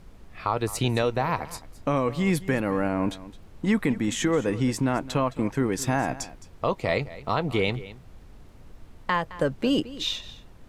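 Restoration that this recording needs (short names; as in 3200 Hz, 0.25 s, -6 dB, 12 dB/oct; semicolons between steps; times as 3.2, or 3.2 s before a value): de-click; noise print and reduce 24 dB; inverse comb 0.215 s -17 dB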